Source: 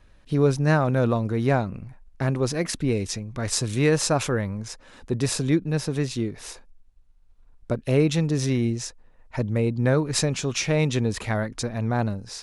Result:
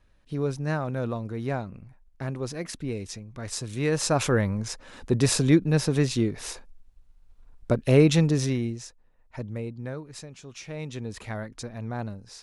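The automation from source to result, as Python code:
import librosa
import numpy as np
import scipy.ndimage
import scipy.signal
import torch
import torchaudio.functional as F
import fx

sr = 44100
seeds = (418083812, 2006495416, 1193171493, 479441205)

y = fx.gain(x, sr, db=fx.line((3.71, -8.0), (4.37, 2.5), (8.23, 2.5), (8.84, -9.0), (9.51, -9.0), (10.28, -19.5), (11.26, -8.5)))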